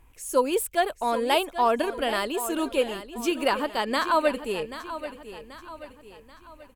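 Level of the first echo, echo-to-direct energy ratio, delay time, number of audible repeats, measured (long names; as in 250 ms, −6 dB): −12.5 dB, −11.5 dB, 784 ms, 4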